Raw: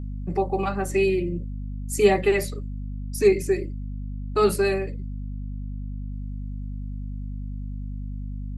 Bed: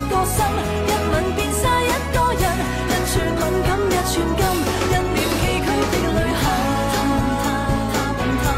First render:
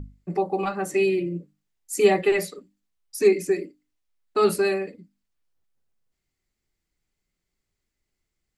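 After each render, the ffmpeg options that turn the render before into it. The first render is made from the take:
-af "bandreject=f=50:t=h:w=6,bandreject=f=100:t=h:w=6,bandreject=f=150:t=h:w=6,bandreject=f=200:t=h:w=6,bandreject=f=250:t=h:w=6,bandreject=f=300:t=h:w=6"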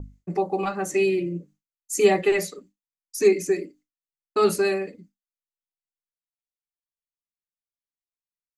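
-af "agate=range=0.0224:threshold=0.00447:ratio=3:detection=peak,equalizer=f=6400:t=o:w=0.29:g=9"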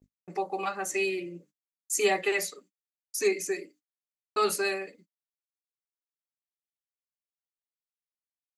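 -af "highpass=f=1000:p=1,agate=range=0.0178:threshold=0.00158:ratio=16:detection=peak"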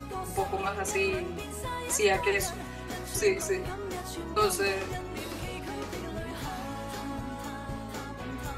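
-filter_complex "[1:a]volume=0.133[s0];[0:a][s0]amix=inputs=2:normalize=0"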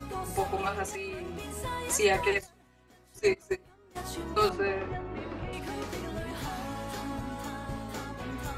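-filter_complex "[0:a]asettb=1/sr,asplit=3[s0][s1][s2];[s0]atrim=end=0.844[s3];[s1]atrim=start=0.84:end=1.56,asetpts=PTS-STARTPTS,afade=t=in:d=0.004:c=qsin,afade=t=out:st=0.716:d=0.004:c=qsin,acompressor=threshold=0.02:ratio=6:attack=3.2:release=140:knee=1:detection=peak[s4];[s2]atrim=start=1.556[s5];[s3][s4]acrossfade=d=0.004:c1=hsin:c2=qsin[s6];[s6][s5]acrossfade=d=0.004:c1=qsin:c2=hsin,asplit=3[s7][s8][s9];[s7]afade=t=out:st=2.33:d=0.02[s10];[s8]agate=range=0.0794:threshold=0.0398:ratio=16:release=100:detection=peak,afade=t=in:st=2.33:d=0.02,afade=t=out:st=3.95:d=0.02[s11];[s9]afade=t=in:st=3.95:d=0.02[s12];[s10][s11][s12]amix=inputs=3:normalize=0,asettb=1/sr,asplit=3[s13][s14][s15];[s13]atrim=end=4.494[s16];[s14]atrim=start=4.49:end=5.53,asetpts=PTS-STARTPTS,afade=t=in:d=0.004:c=qsin,afade=t=out:st=1.036:d=0.004:c=qsin,lowpass=2000[s17];[s15]atrim=start=5.526[s18];[s16][s17]acrossfade=d=0.004:c1=hsin:c2=qsin[s19];[s19][s18]acrossfade=d=0.004:c1=qsin:c2=hsin"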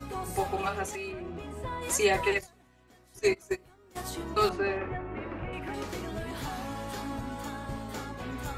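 -filter_complex "[0:a]asplit=3[s0][s1][s2];[s0]afade=t=out:st=1.11:d=0.02[s3];[s1]lowpass=f=1600:p=1,afade=t=in:st=1.11:d=0.02,afade=t=out:st=1.81:d=0.02[s4];[s2]afade=t=in:st=1.81:d=0.02[s5];[s3][s4][s5]amix=inputs=3:normalize=0,asettb=1/sr,asplit=3[s6][s7][s8];[s6]atrim=end=3.224[s9];[s7]atrim=start=3.22:end=4.1,asetpts=PTS-STARTPTS,afade=t=in:d=0.004:c=qsin,afade=t=out:st=0.876:d=0.004:c=qsin,highshelf=f=6600:g=5.5[s10];[s8]atrim=start=4.096[s11];[s9][s10]acrossfade=d=0.004:c1=hsin:c2=qsin[s12];[s12][s11]acrossfade=d=0.004:c1=qsin:c2=hsin,asettb=1/sr,asplit=3[s13][s14][s15];[s13]atrim=end=4.774[s16];[s14]atrim=start=4.77:end=5.74,asetpts=PTS-STARTPTS,afade=t=in:d=0.004:c=qsin,afade=t=out:st=0.966:d=0.004:c=qsin,highshelf=f=3200:t=q:w=1.5:g=-9.5[s17];[s15]atrim=start=5.736[s18];[s16][s17]acrossfade=d=0.004:c1=hsin:c2=qsin[s19];[s19][s18]acrossfade=d=0.004:c1=qsin:c2=hsin"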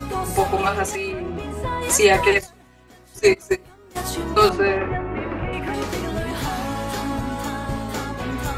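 -af "volume=3.35,alimiter=limit=0.708:level=0:latency=1"

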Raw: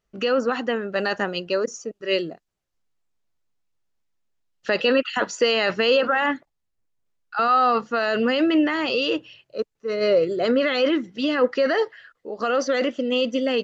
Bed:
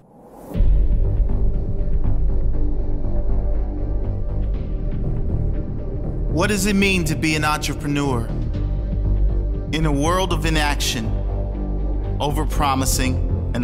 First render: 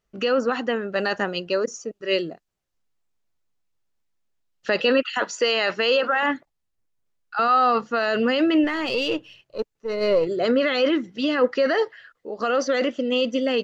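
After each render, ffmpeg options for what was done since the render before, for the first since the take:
-filter_complex "[0:a]asettb=1/sr,asplit=3[s0][s1][s2];[s0]atrim=end=5.044[s3];[s1]atrim=start=5.04:end=6.23,asetpts=PTS-STARTPTS,afade=t=in:d=0.004:c=qsin,afade=t=out:st=1.186:d=0.004:c=qsin,highpass=f=380:p=1[s4];[s2]atrim=start=6.226[s5];[s3][s4]acrossfade=d=0.004:c1=hsin:c2=qsin[s6];[s6][s5]acrossfade=d=0.004:c1=qsin:c2=hsin,asettb=1/sr,asplit=3[s7][s8][s9];[s7]atrim=end=8.644[s10];[s8]atrim=start=8.64:end=10.27,asetpts=PTS-STARTPTS,afade=t=in:d=0.004:c=qsin,afade=t=out:st=1.626:d=0.004:c=qsin,aeval=exprs='if(lt(val(0),0),0.708*val(0),val(0))':c=same[s11];[s9]atrim=start=10.266[s12];[s10][s11]acrossfade=d=0.004:c1=hsin:c2=qsin[s13];[s13][s12]acrossfade=d=0.004:c1=qsin:c2=hsin"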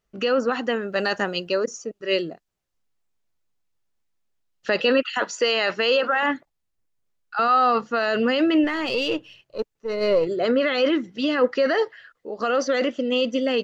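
-filter_complex "[0:a]asettb=1/sr,asplit=3[s0][s1][s2];[s0]atrim=end=0.634[s3];[s1]atrim=start=0.63:end=1.52,asetpts=PTS-STARTPTS,afade=t=in:d=0.004:c=qsin,afade=t=out:st=0.886:d=0.004:c=qsin,highshelf=f=6500:g=9.5[s4];[s2]atrim=start=1.516[s5];[s3][s4]acrossfade=d=0.004:c1=hsin:c2=qsin[s6];[s6][s5]acrossfade=d=0.004:c1=qsin:c2=hsin,asettb=1/sr,asplit=3[s7][s8][s9];[s7]atrim=end=10.344[s10];[s8]atrim=start=10.34:end=10.78,asetpts=PTS-STARTPTS,afade=t=in:d=0.004:c=qsin,afade=t=out:st=0.436:d=0.004:c=qsin,bass=f=250:g=-2,treble=f=4000:g=-4[s11];[s9]atrim=start=10.776[s12];[s10][s11]acrossfade=d=0.004:c1=hsin:c2=qsin[s13];[s13][s12]acrossfade=d=0.004:c1=qsin:c2=hsin"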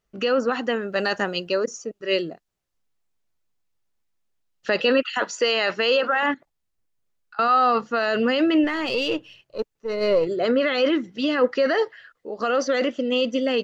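-filter_complex "[0:a]asettb=1/sr,asplit=3[s0][s1][s2];[s0]atrim=end=6.344[s3];[s1]atrim=start=6.34:end=7.39,asetpts=PTS-STARTPTS,afade=t=in:d=0.004:c=qsin,afade=t=out:st=1.046:d=0.004:c=qsin,acompressor=threshold=0.00794:ratio=12:attack=3.2:release=140:knee=1:detection=peak[s4];[s2]atrim=start=7.386[s5];[s3][s4]acrossfade=d=0.004:c1=hsin:c2=qsin[s6];[s6][s5]acrossfade=d=0.004:c1=qsin:c2=hsin"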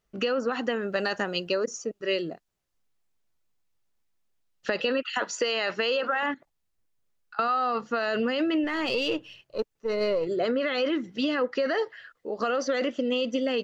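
-af "acompressor=threshold=0.0708:ratio=6"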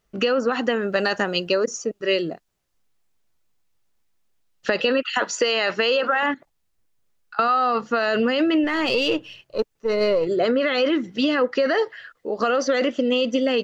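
-af "volume=2"

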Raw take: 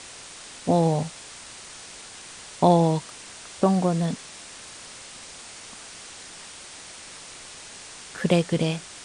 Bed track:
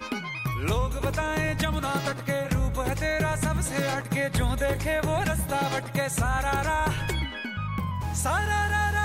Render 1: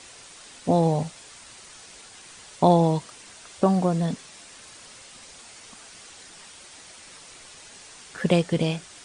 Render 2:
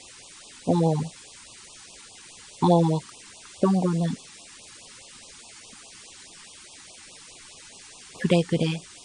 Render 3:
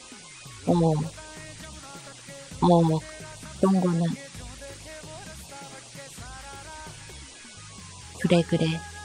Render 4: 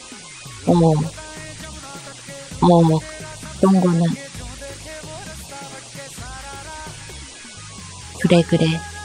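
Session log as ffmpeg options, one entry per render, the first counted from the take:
-af "afftdn=nr=6:nf=-43"
-af "afftfilt=real='re*(1-between(b*sr/1024,520*pow(1800/520,0.5+0.5*sin(2*PI*4.8*pts/sr))/1.41,520*pow(1800/520,0.5+0.5*sin(2*PI*4.8*pts/sr))*1.41))':imag='im*(1-between(b*sr/1024,520*pow(1800/520,0.5+0.5*sin(2*PI*4.8*pts/sr))/1.41,520*pow(1800/520,0.5+0.5*sin(2*PI*4.8*pts/sr))*1.41))':win_size=1024:overlap=0.75"
-filter_complex "[1:a]volume=0.141[s0];[0:a][s0]amix=inputs=2:normalize=0"
-af "volume=2.37,alimiter=limit=0.794:level=0:latency=1"

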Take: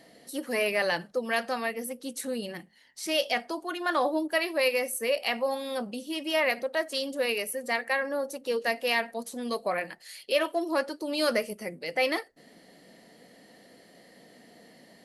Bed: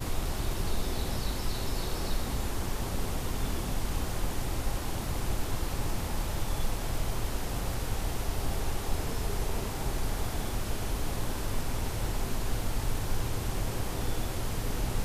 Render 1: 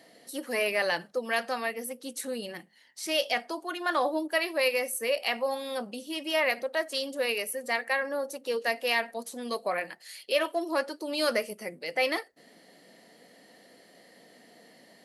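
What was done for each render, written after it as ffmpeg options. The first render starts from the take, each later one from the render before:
-af "highpass=54,lowshelf=f=190:g=-9.5"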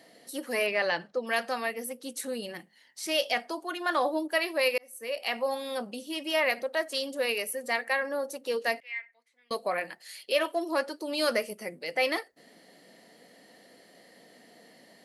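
-filter_complex "[0:a]asettb=1/sr,asplit=3[s0][s1][s2];[s0]atrim=end=0.664[s3];[s1]atrim=start=0.66:end=1.27,asetpts=PTS-STARTPTS,afade=t=in:d=0.004:c=qsin,afade=t=out:st=0.606:d=0.004:c=qsin,lowpass=4800[s4];[s2]atrim=start=1.266[s5];[s3][s4]acrossfade=d=0.004:c1=hsin:c2=qsin[s6];[s6][s5]acrossfade=d=0.004:c1=qsin:c2=hsin,asettb=1/sr,asplit=3[s7][s8][s9];[s7]atrim=end=8.804[s10];[s8]atrim=start=8.8:end=9.51,asetpts=PTS-STARTPTS,afade=t=in:d=0.004:c=qsin,afade=t=out:st=0.706:d=0.004:c=qsin,bandpass=f=2100:t=q:w=14[s11];[s9]atrim=start=9.506[s12];[s10][s11]acrossfade=d=0.004:c1=hsin:c2=qsin[s13];[s13][s12]acrossfade=d=0.004:c1=qsin:c2=hsin,asplit=2[s14][s15];[s14]atrim=end=4.78,asetpts=PTS-STARTPTS,afade=t=out:st=4.776:d=0.004:c=hsin[s16];[s15]atrim=start=4.78,asetpts=PTS-STARTPTS,afade=t=in:d=0.64[s17];[s16][s17]concat=n=2:v=0:a=1"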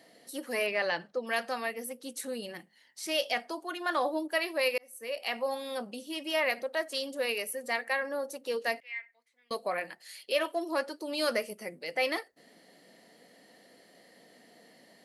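-af "volume=0.75"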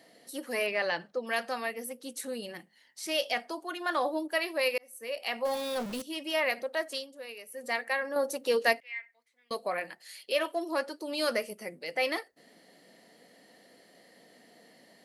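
-filter_complex "[0:a]asettb=1/sr,asplit=3[s0][s1][s2];[s0]atrim=end=5.454[s3];[s1]atrim=start=5.45:end=6.02,asetpts=PTS-STARTPTS,afade=t=in:d=0.004:c=qsin,afade=t=out:st=0.566:d=0.004:c=qsin,aeval=exprs='val(0)+0.5*0.0178*sgn(val(0))':c=same[s4];[s2]atrim=start=6.016[s5];[s3][s4]acrossfade=d=0.004:c1=hsin:c2=qsin[s6];[s6][s5]acrossfade=d=0.004:c1=qsin:c2=hsin,asplit=5[s7][s8][s9][s10][s11];[s7]atrim=end=7.07,asetpts=PTS-STARTPTS,afade=t=out:st=6.93:d=0.14:silence=0.251189[s12];[s8]atrim=start=7.07:end=7.5,asetpts=PTS-STARTPTS,volume=0.251[s13];[s9]atrim=start=7.5:end=8.162,asetpts=PTS-STARTPTS,afade=t=in:d=0.14:silence=0.251189[s14];[s10]atrim=start=8.158:end=8.732,asetpts=PTS-STARTPTS,volume=2[s15];[s11]atrim=start=8.728[s16];[s12][s13][s14]concat=n=3:v=0:a=1[s17];[s17][s15]acrossfade=d=0.004:c1=hsin:c2=hsin[s18];[s18][s16]acrossfade=d=0.004:c1=hsin:c2=hsin"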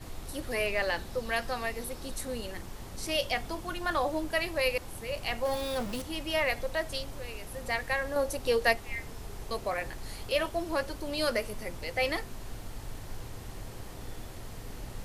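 -filter_complex "[1:a]volume=0.299[s0];[0:a][s0]amix=inputs=2:normalize=0"

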